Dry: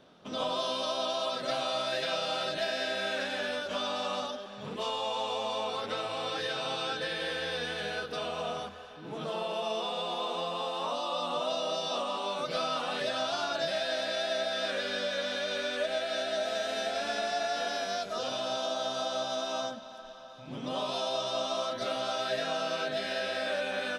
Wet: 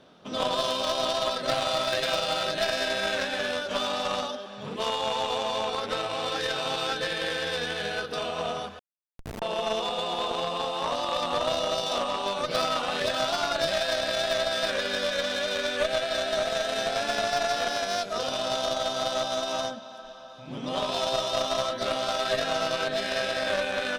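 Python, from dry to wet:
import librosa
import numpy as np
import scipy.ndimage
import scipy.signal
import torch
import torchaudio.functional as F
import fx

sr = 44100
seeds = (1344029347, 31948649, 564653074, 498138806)

y = fx.cheby_harmonics(x, sr, harmonics=(3, 6, 8), levels_db=(-17, -18, -22), full_scale_db=-19.0)
y = fx.schmitt(y, sr, flips_db=-33.5, at=(8.79, 9.42))
y = F.gain(torch.from_numpy(y), 8.0).numpy()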